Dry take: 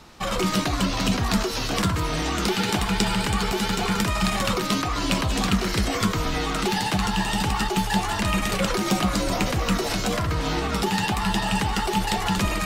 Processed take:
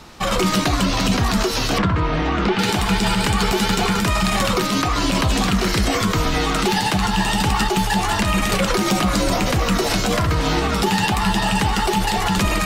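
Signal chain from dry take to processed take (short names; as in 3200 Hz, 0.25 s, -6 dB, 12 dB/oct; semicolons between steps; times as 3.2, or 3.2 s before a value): 1.78–2.59 LPF 2400 Hz 12 dB/oct; limiter -14.5 dBFS, peak gain reduction 8.5 dB; gain +6 dB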